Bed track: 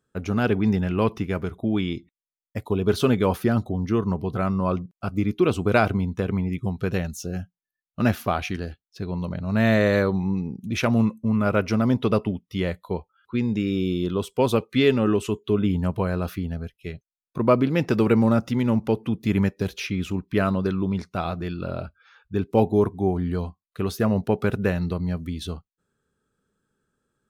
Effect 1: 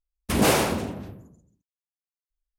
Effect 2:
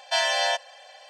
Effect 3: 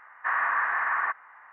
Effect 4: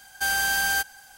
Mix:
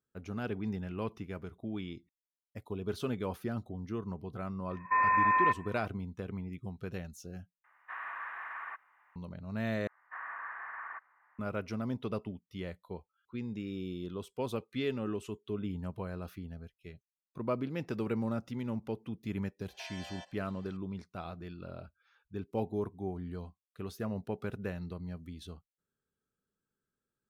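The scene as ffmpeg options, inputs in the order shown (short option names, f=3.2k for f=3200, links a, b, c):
-filter_complex "[3:a]asplit=2[a][b];[0:a]volume=-15dB[c];[4:a]lowpass=f=2.2k:t=q:w=0.5098,lowpass=f=2.2k:t=q:w=0.6013,lowpass=f=2.2k:t=q:w=0.9,lowpass=f=2.2k:t=q:w=2.563,afreqshift=-2600[d];[a]aexciter=amount=3:drive=6.4:freq=2.5k[e];[2:a]acompressor=threshold=-27dB:ratio=6:attack=3.2:release=140:knee=1:detection=peak[f];[c]asplit=3[g][h][i];[g]atrim=end=7.644[j];[e]atrim=end=1.52,asetpts=PTS-STARTPTS,volume=-15.5dB[k];[h]atrim=start=9.156:end=9.874[l];[b]atrim=end=1.52,asetpts=PTS-STARTPTS,volume=-16.5dB[m];[i]atrim=start=11.386[n];[d]atrim=end=1.17,asetpts=PTS-STARTPTS,volume=-0.5dB,afade=t=in:d=0.004:c=hsin,afade=t=out:st=1.166:d=0.004:c=hsin,adelay=4700[o];[f]atrim=end=1.09,asetpts=PTS-STARTPTS,volume=-17dB,afade=t=in:d=0.004:c=hsin,afade=t=out:st=1.086:d=0.004:c=hsin,adelay=19680[p];[j][k]acrossfade=d=0.004:c1=hsin:c2=hsin[q];[q][l]acrossfade=d=0.004:c1=hsin:c2=hsin[r];[r][m]acrossfade=d=0.004:c1=hsin:c2=hsin[s];[s][n]acrossfade=d=0.004:c1=hsin:c2=hsin[t];[t][o][p]amix=inputs=3:normalize=0"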